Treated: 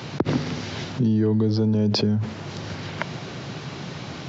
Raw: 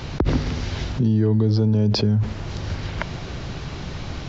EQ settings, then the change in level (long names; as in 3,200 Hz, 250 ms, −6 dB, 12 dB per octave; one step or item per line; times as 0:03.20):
high-pass filter 120 Hz 24 dB per octave
0.0 dB